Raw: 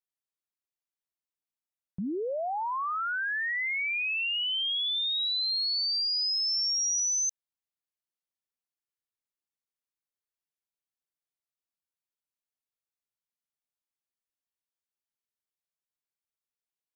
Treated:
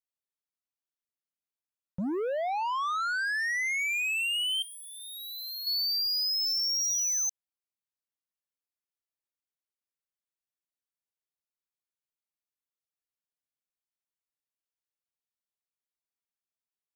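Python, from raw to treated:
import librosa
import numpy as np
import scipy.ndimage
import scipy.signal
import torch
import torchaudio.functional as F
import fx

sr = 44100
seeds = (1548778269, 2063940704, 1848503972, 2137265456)

y = fx.leveller(x, sr, passes=2)
y = fx.fixed_phaser(y, sr, hz=680.0, stages=8, at=(4.62, 5.67))
y = F.gain(torch.from_numpy(y), -2.0).numpy()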